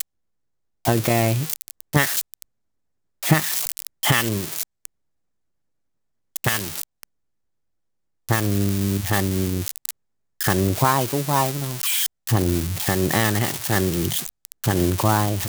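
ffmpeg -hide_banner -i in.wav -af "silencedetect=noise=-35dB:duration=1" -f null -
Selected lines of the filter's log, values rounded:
silence_start: 4.85
silence_end: 6.36 | silence_duration: 1.50
silence_start: 7.03
silence_end: 8.29 | silence_duration: 1.25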